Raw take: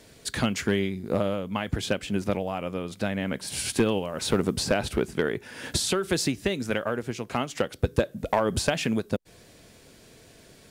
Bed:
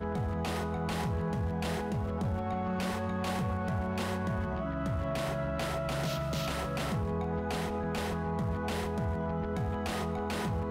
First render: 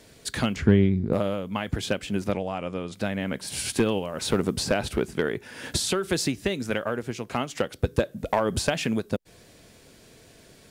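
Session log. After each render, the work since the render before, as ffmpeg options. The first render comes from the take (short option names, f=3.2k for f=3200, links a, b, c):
-filter_complex "[0:a]asettb=1/sr,asplit=3[a][b][c];[a]atrim=end=0.564[d];[b]atrim=start=0.56:end=1.13,asetpts=PTS-STARTPTS,afade=t=in:d=0.004:c=qsin,afade=t=out:st=0.566:d=0.004:c=qsin,aemphasis=mode=reproduction:type=riaa[e];[c]atrim=start=1.126[f];[d][e]acrossfade=d=0.004:c1=hsin:c2=qsin[g];[g][f]acrossfade=d=0.004:c1=qsin:c2=hsin,asettb=1/sr,asplit=3[h][i][j];[h]atrim=end=2.324[k];[i]atrim=start=2.32:end=2.94,asetpts=PTS-STARTPTS,afade=t=in:d=0.004:c=qsin,afade=t=out:st=0.616:d=0.004:c=qsin,lowpass=f=9.3k:w=0.5412,lowpass=f=9.3k:w=1.3066[l];[j]atrim=start=2.936[m];[k][l]acrossfade=d=0.004:c1=hsin:c2=qsin[n];[n][m]acrossfade=d=0.004:c1=qsin:c2=hsin"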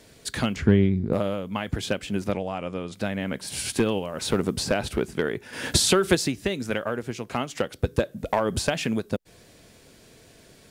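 -filter_complex "[0:a]asplit=3[a][b][c];[a]atrim=end=5.532[d];[b]atrim=start=5.528:end=6.152,asetpts=PTS-STARTPTS,volume=6dB[e];[c]atrim=start=6.148[f];[d][e]acrossfade=d=0.004:c1=hsin:c2=hsin[g];[g][f]acrossfade=d=0.004:c1=hsin:c2=hsin"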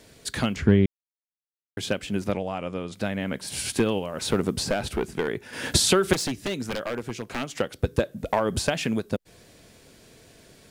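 -filter_complex "[0:a]asettb=1/sr,asplit=3[a][b][c];[a]atrim=end=4.674[d];[b]atrim=start=4.67:end=5.28,asetpts=PTS-STARTPTS,afade=t=in:d=0.004:c=qsin,afade=t=out:st=0.606:d=0.004:c=qsin,aeval=exprs='clip(val(0),-1,0.0891)':c=same[e];[c]atrim=start=5.276[f];[d][e]acrossfade=d=0.004:c1=hsin:c2=qsin[g];[g][f]acrossfade=d=0.004:c1=qsin:c2=hsin,asettb=1/sr,asplit=3[h][i][j];[h]atrim=end=6.134[k];[i]atrim=start=6.13:end=7.49,asetpts=PTS-STARTPTS,afade=t=in:d=0.004:c=qsin,afade=t=out:st=1.356:d=0.004:c=qsin,aeval=exprs='0.0794*(abs(mod(val(0)/0.0794+3,4)-2)-1)':c=same[l];[j]atrim=start=7.486[m];[k][l]acrossfade=d=0.004:c1=hsin:c2=qsin[n];[n][m]acrossfade=d=0.004:c1=qsin:c2=hsin,asplit=3[o][p][q];[o]atrim=end=0.86,asetpts=PTS-STARTPTS,afade=t=out:st=0.856:d=0.004:c=hsin[r];[p]atrim=start=0.86:end=1.77,asetpts=PTS-STARTPTS,volume=0[s];[q]atrim=start=1.77,asetpts=PTS-STARTPTS,afade=t=in:d=0.004:c=hsin[t];[r][s][t]concat=n=3:v=0:a=1"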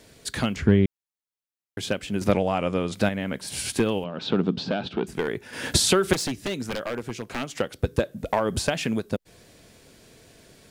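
-filter_complex "[0:a]asettb=1/sr,asplit=3[a][b][c];[a]atrim=end=2.214[d];[b]atrim=start=2.21:end=3.09,asetpts=PTS-STARTPTS,afade=t=in:d=0.004:c=qsin,afade=t=out:st=0.876:d=0.004:c=qsin,acontrast=64[e];[c]atrim=start=3.086[f];[d][e]acrossfade=d=0.004:c1=hsin:c2=qsin[g];[g][f]acrossfade=d=0.004:c1=qsin:c2=hsin,asettb=1/sr,asplit=3[h][i][j];[h]atrim=end=4.044[k];[i]atrim=start=4.04:end=5.07,asetpts=PTS-STARTPTS,afade=t=in:d=0.004:c=qsin,afade=t=out:st=1.026:d=0.004:c=qsin,highpass=150,equalizer=f=180:t=q:w=4:g=7,equalizer=f=270:t=q:w=4:g=3,equalizer=f=550:t=q:w=4:g=-3,equalizer=f=1.1k:t=q:w=4:g=-3,equalizer=f=2k:t=q:w=4:g=-9,equalizer=f=3.5k:t=q:w=4:g=4,lowpass=f=4.1k:w=0.5412,lowpass=f=4.1k:w=1.3066[l];[j]atrim=start=5.066[m];[k][l]acrossfade=d=0.004:c1=hsin:c2=qsin[n];[n][m]acrossfade=d=0.004:c1=qsin:c2=hsin"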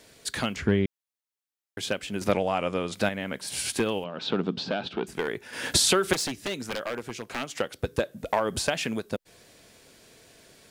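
-af "lowshelf=f=320:g=-8"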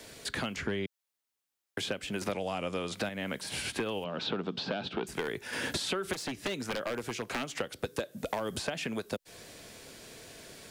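-filter_complex "[0:a]asplit=2[a][b];[b]alimiter=limit=-19.5dB:level=0:latency=1:release=223,volume=-2dB[c];[a][c]amix=inputs=2:normalize=0,acrossover=split=130|430|3300[d][e][f][g];[d]acompressor=threshold=-50dB:ratio=4[h];[e]acompressor=threshold=-39dB:ratio=4[i];[f]acompressor=threshold=-36dB:ratio=4[j];[g]acompressor=threshold=-44dB:ratio=4[k];[h][i][j][k]amix=inputs=4:normalize=0"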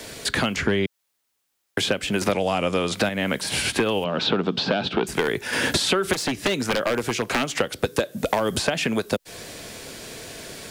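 -af "volume=11.5dB"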